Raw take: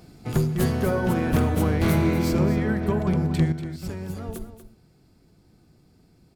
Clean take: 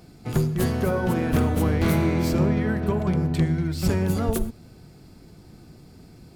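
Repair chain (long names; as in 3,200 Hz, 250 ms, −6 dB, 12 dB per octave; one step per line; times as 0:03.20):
echo removal 239 ms −12 dB
level 0 dB, from 0:03.52 +10.5 dB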